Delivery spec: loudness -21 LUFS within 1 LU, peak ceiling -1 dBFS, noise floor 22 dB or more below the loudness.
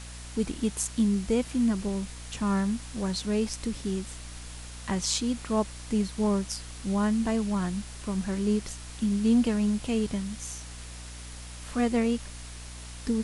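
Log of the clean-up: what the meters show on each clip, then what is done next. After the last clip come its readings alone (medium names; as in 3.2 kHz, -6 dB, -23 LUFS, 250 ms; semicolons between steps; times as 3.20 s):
hum 60 Hz; highest harmonic 300 Hz; hum level -41 dBFS; noise floor -42 dBFS; noise floor target -51 dBFS; loudness -29.0 LUFS; peak level -11.5 dBFS; loudness target -21.0 LUFS
-> de-hum 60 Hz, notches 5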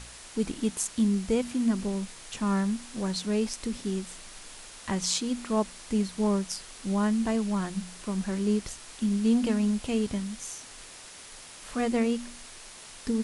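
hum not found; noise floor -47 dBFS; noise floor target -51 dBFS
-> noise reduction 6 dB, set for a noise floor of -47 dBFS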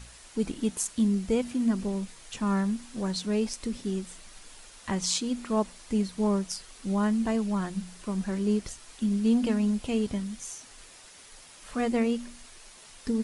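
noise floor -51 dBFS; noise floor target -52 dBFS
-> noise reduction 6 dB, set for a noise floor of -51 dBFS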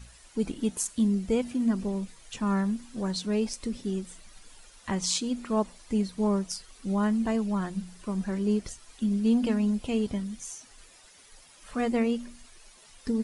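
noise floor -55 dBFS; loudness -29.5 LUFS; peak level -11.0 dBFS; loudness target -21.0 LUFS
-> trim +8.5 dB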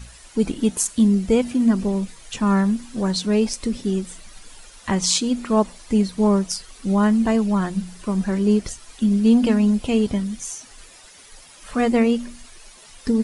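loudness -21.0 LUFS; peak level -2.5 dBFS; noise floor -47 dBFS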